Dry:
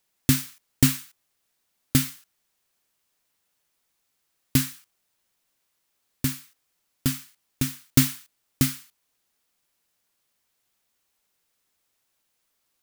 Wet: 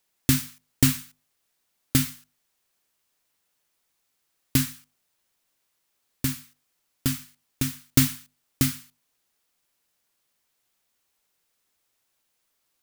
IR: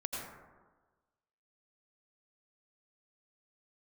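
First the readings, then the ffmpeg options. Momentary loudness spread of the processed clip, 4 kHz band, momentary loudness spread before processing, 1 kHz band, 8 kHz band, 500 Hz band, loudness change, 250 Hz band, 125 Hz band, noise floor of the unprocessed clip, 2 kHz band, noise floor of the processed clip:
13 LU, 0.0 dB, 14 LU, 0.0 dB, 0.0 dB, 0.0 dB, -0.5 dB, -1.0 dB, -0.5 dB, -75 dBFS, 0.0 dB, -75 dBFS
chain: -af "bandreject=f=50:t=h:w=6,bandreject=f=100:t=h:w=6,bandreject=f=150:t=h:w=6,bandreject=f=200:t=h:w=6,bandreject=f=250:t=h:w=6"

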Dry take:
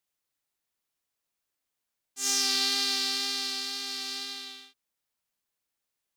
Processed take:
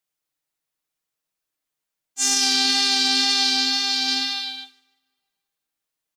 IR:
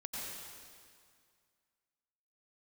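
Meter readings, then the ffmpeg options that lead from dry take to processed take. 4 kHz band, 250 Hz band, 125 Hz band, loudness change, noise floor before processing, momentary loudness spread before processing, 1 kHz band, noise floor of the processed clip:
+9.5 dB, +13.0 dB, n/a, +9.0 dB, -85 dBFS, 14 LU, +11.5 dB, -84 dBFS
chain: -filter_complex "[0:a]aecho=1:1:6.4:0.49,aecho=1:1:150|300|450:0.178|0.0498|0.0139,asplit=2[a][b];[1:a]atrim=start_sample=2205,asetrate=43659,aresample=44100,lowpass=3.9k[c];[b][c]afir=irnorm=-1:irlink=0,volume=-21dB[d];[a][d]amix=inputs=2:normalize=0,afftdn=nr=13:nf=-40,adynamicequalizer=threshold=0.00178:dfrequency=210:dqfactor=0.81:tfrequency=210:tqfactor=0.81:attack=5:release=100:ratio=0.375:range=3:mode=boostabove:tftype=bell,alimiter=level_in=19dB:limit=-1dB:release=50:level=0:latency=1,volume=-6.5dB"

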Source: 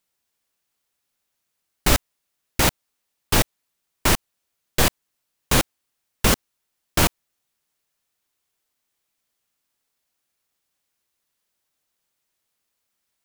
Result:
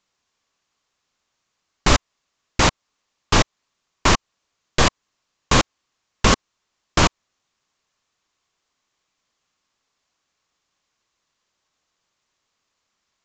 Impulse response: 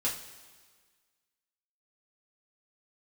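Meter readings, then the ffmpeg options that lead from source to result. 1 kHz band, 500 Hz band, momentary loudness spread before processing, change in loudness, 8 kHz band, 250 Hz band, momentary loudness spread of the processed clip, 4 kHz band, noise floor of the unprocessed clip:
+5.5 dB, +2.5 dB, 6 LU, +1.5 dB, -0.5 dB, +2.5 dB, 6 LU, +2.5 dB, -78 dBFS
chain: -filter_complex "[0:a]asplit=2[a][b];[b]alimiter=limit=-14.5dB:level=0:latency=1:release=175,volume=-1dB[c];[a][c]amix=inputs=2:normalize=0,equalizer=f=1.1k:t=o:w=0.29:g=6.5,aresample=16000,aresample=44100"

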